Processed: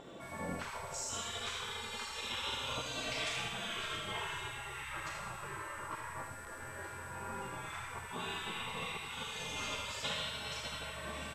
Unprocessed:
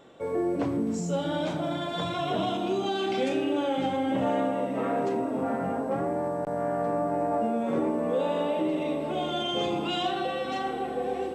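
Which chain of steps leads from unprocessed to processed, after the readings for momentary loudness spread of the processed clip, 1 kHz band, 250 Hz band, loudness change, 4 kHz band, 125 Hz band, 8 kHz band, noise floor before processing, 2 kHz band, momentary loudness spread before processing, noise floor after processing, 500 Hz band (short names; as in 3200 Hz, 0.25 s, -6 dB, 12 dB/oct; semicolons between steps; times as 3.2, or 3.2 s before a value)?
7 LU, -12.0 dB, -22.5 dB, -11.5 dB, -3.0 dB, -11.0 dB, n/a, -33 dBFS, -0.5 dB, 3 LU, -47 dBFS, -20.0 dB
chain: in parallel at -11.5 dB: soft clip -28.5 dBFS, distortion -11 dB; on the sum: low shelf 100 Hz +5.5 dB; Schroeder reverb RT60 1 s, combs from 33 ms, DRR 1.5 dB; whine 750 Hz -30 dBFS; high shelf 5200 Hz +5.5 dB; spectral gate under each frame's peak -20 dB weak; on a send: echo 79 ms -7.5 dB; on the sum: gain -2.5 dB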